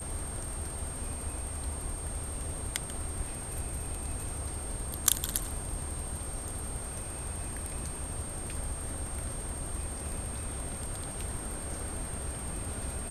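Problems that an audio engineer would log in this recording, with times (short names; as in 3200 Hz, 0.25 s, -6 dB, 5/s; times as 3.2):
tone 8600 Hz -40 dBFS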